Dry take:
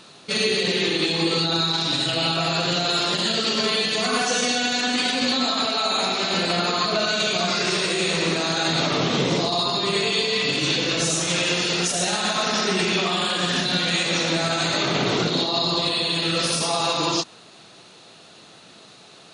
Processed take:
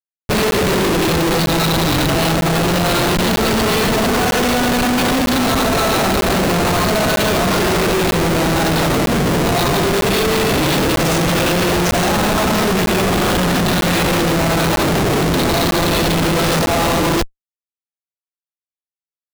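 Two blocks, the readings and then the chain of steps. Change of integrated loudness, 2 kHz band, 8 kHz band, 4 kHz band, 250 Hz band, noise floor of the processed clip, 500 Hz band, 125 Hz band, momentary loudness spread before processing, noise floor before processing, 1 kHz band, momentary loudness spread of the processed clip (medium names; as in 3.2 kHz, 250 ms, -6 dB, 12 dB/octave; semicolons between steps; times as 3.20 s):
+5.5 dB, +5.5 dB, +4.5 dB, -0.5 dB, +10.0 dB, under -85 dBFS, +8.5 dB, +11.5 dB, 1 LU, -48 dBFS, +8.0 dB, 1 LU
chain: band-stop 7 kHz, Q 29; Schmitt trigger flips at -21 dBFS; crackling interface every 0.95 s, samples 512, zero, from 0.51 s; trim +8 dB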